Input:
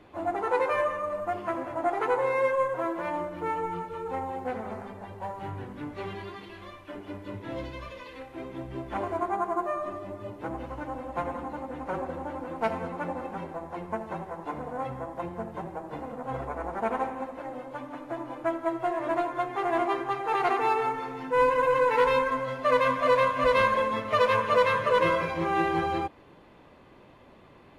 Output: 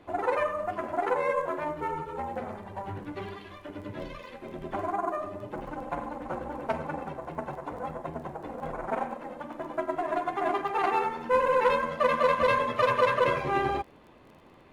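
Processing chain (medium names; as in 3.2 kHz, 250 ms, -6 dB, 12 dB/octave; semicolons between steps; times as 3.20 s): crackle 13 per s -44 dBFS; granular stretch 0.53×, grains 23 ms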